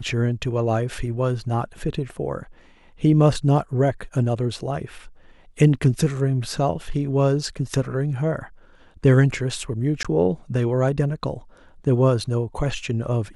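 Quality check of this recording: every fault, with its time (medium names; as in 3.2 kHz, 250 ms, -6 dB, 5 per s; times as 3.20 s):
10.03–10.05 s: dropout 16 ms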